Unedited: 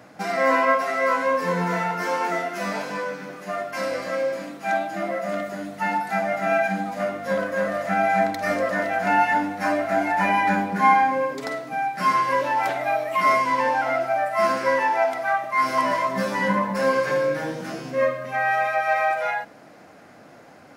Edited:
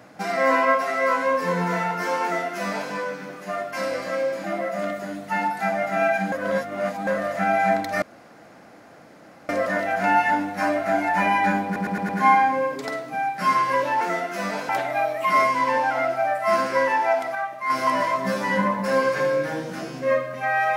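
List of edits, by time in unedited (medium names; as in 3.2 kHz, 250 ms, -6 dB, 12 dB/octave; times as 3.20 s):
2.23–2.91 s: copy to 12.60 s
4.44–4.94 s: delete
6.82–7.57 s: reverse
8.52 s: insert room tone 1.47 s
10.68 s: stutter 0.11 s, 5 plays
15.26–15.61 s: gain -5.5 dB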